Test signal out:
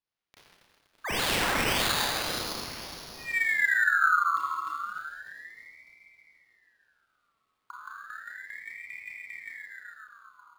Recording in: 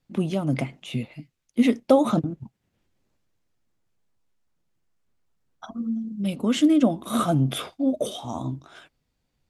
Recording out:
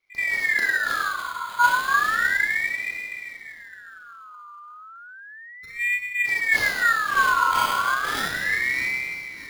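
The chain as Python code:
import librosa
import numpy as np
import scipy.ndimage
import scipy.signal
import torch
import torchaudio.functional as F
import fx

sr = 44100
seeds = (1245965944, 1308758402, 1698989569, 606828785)

p1 = scipy.signal.sosfilt(scipy.signal.cheby1(5, 1.0, [240.0, 2200.0], 'bandstop', fs=sr, output='sos'), x)
p2 = fx.bass_treble(p1, sr, bass_db=0, treble_db=3)
p3 = fx.rider(p2, sr, range_db=10, speed_s=2.0)
p4 = p3 + fx.echo_alternate(p3, sr, ms=306, hz=2300.0, feedback_pct=57, wet_db=-5.0, dry=0)
p5 = fx.rev_schroeder(p4, sr, rt60_s=2.2, comb_ms=27, drr_db=-6.0)
p6 = np.repeat(p5[::8], 8)[:len(p5)]
y = fx.ring_lfo(p6, sr, carrier_hz=1700.0, swing_pct=30, hz=0.33)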